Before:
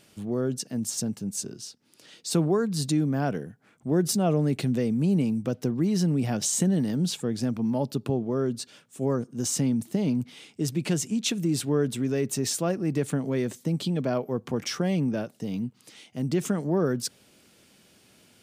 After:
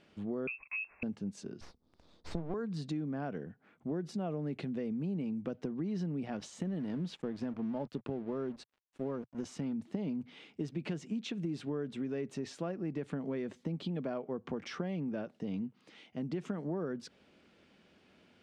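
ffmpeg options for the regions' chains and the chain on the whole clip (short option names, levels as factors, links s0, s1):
-filter_complex "[0:a]asettb=1/sr,asplit=3[s0][s1][s2];[s0]atrim=end=0.474[s3];[s1]atrim=start=0.47:end=1.03,asetpts=PTS-STARTPTS,afade=t=in:d=0.004:c=qsin,afade=t=out:st=0.556:d=0.004:c=qsin,agate=range=0.0794:threshold=0.00501:ratio=16:release=100:detection=peak,lowpass=f=2400:t=q:w=0.5098,lowpass=f=2400:t=q:w=0.6013,lowpass=f=2400:t=q:w=0.9,lowpass=f=2400:t=q:w=2.563,afreqshift=-2800[s4];[s2]atrim=start=1.026[s5];[s3][s4]acrossfade=d=0.004:c1=hsin:c2=qsin[s6];[s6][s5]acrossfade=d=0.004:c1=qsin:c2=hsin,asettb=1/sr,asplit=3[s7][s8][s9];[s7]atrim=end=1.614[s10];[s8]atrim=start=1.61:end=2.54,asetpts=PTS-STARTPTS,afade=t=in:d=0.004:c=qsin,afade=t=out:st=0.926:d=0.004:c=qsin,asuperstop=centerf=2100:order=20:qfactor=0.98,aeval=exprs='max(val(0),0)':c=same,equalizer=f=67:w=0.62:g=12[s11];[s9]atrim=start=2.536[s12];[s10][s11]acrossfade=d=0.004:c1=hsin:c2=qsin[s13];[s13][s12]acrossfade=d=0.004:c1=qsin:c2=hsin,asettb=1/sr,asplit=3[s14][s15][s16];[s14]atrim=end=6.284[s17];[s15]atrim=start=6.28:end=9.73,asetpts=PTS-STARTPTS,afade=t=in:d=0.004:c=qsin,afade=t=out:st=3.446:d=0.004:c=qsin,equalizer=f=11000:t=o:w=0.23:g=6.5,aeval=exprs='sgn(val(0))*max(abs(val(0))-0.00596,0)':c=same[s18];[s16]atrim=start=9.726[s19];[s17][s18]acrossfade=d=0.004:c1=hsin:c2=qsin[s20];[s20][s19]acrossfade=d=0.004:c1=qsin:c2=hsin,acompressor=threshold=0.0355:ratio=6,lowpass=2800,equalizer=f=120:t=o:w=0.27:g=-13,volume=0.668"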